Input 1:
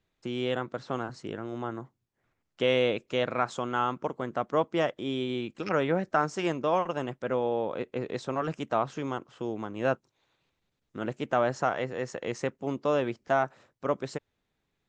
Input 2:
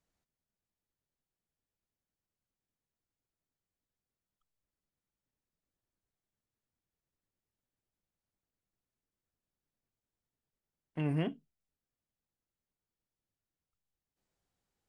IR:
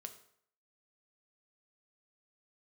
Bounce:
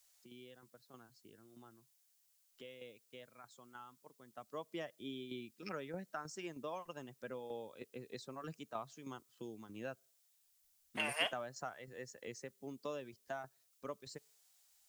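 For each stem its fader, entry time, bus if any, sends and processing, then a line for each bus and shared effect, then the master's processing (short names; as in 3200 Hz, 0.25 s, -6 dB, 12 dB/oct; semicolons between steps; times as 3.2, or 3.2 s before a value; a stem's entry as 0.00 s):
4.25 s -22.5 dB -> 4.6 s -12 dB, 0.00 s, send -20.5 dB, per-bin expansion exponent 1.5; tremolo saw down 3.2 Hz, depth 65%; three-band squash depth 70%
+2.0 dB, 0.00 s, no send, steep high-pass 560 Hz 48 dB/oct; high shelf 2500 Hz +9 dB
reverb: on, RT60 0.65 s, pre-delay 4 ms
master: high shelf 3100 Hz +12 dB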